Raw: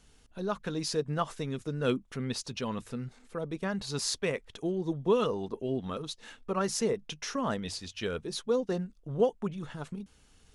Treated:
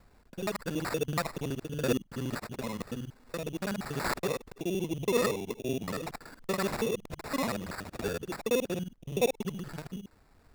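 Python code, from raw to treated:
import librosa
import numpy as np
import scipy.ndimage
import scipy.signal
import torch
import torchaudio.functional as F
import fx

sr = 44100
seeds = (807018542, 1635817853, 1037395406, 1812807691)

y = fx.local_reverse(x, sr, ms=47.0)
y = fx.sample_hold(y, sr, seeds[0], rate_hz=3100.0, jitter_pct=0)
y = fx.am_noise(y, sr, seeds[1], hz=5.7, depth_pct=50)
y = y * librosa.db_to_amplitude(2.5)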